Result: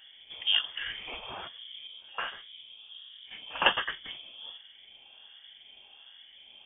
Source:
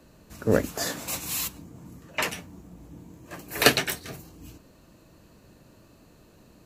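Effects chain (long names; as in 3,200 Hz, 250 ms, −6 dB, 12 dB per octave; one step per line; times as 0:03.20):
rippled gain that drifts along the octave scale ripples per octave 0.55, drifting −1.3 Hz, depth 12 dB
in parallel at +1 dB: downward compressor, threshold −39 dBFS, peak gain reduction 26 dB
on the sum: voice inversion scrambler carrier 3,400 Hz
0:01.87–0:03.42: micro pitch shift up and down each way 53 cents
level −7 dB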